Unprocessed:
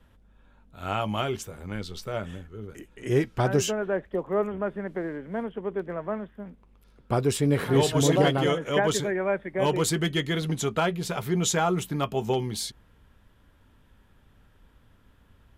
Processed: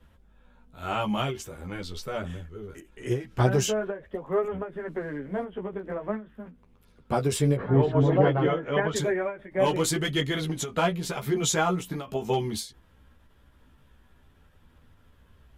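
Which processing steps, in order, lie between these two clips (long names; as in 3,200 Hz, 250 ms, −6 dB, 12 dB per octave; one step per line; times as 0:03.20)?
0:07.54–0:08.95: low-pass filter 1,000 Hz → 2,500 Hz 12 dB per octave
multi-voice chorus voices 2, 0.44 Hz, delay 14 ms, depth 2.1 ms
every ending faded ahead of time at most 170 dB per second
level +3.5 dB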